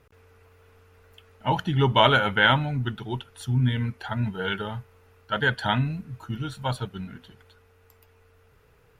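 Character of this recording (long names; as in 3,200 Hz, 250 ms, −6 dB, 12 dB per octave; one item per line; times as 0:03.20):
background noise floor −59 dBFS
spectral slope −3.5 dB per octave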